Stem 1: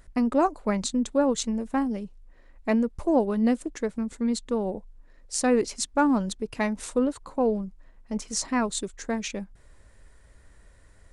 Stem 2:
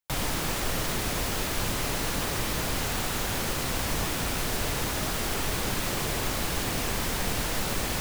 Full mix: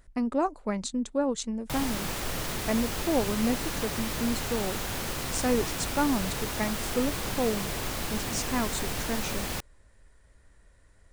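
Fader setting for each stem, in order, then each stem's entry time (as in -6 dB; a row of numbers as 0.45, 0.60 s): -4.5, -3.5 dB; 0.00, 1.60 s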